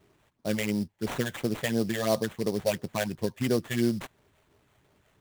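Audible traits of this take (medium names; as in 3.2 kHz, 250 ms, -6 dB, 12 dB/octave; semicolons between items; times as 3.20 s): phasing stages 6, 2.9 Hz, lowest notch 280–3400 Hz; aliases and images of a low sample rate 5.1 kHz, jitter 20%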